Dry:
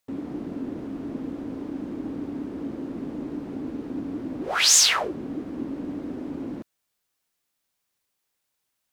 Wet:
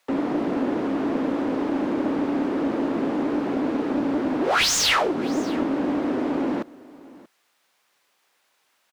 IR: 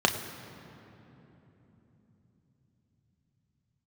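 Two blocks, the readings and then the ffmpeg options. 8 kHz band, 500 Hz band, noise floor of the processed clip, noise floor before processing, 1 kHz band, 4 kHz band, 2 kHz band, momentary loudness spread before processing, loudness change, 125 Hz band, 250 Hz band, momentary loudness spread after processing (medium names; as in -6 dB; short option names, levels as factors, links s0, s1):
-6.5 dB, +10.5 dB, -69 dBFS, -79 dBFS, +8.0 dB, -1.5 dB, +3.5 dB, 17 LU, +2.5 dB, +3.0 dB, +8.0 dB, 6 LU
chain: -filter_complex "[0:a]lowshelf=f=180:g=-6,acrossover=split=360|3000[s0][s1][s2];[s1]acompressor=threshold=0.00794:ratio=2[s3];[s0][s3][s2]amix=inputs=3:normalize=0,acrossover=split=130|1200|3300[s4][s5][s6][s7];[s5]aeval=exprs='clip(val(0),-1,0.0168)':c=same[s8];[s4][s8][s6][s7]amix=inputs=4:normalize=0,asplit=2[s9][s10];[s10]highpass=f=720:p=1,volume=25.1,asoftclip=type=tanh:threshold=0.562[s11];[s9][s11]amix=inputs=2:normalize=0,lowpass=f=1800:p=1,volume=0.501,aecho=1:1:633:0.0891,volume=0.841"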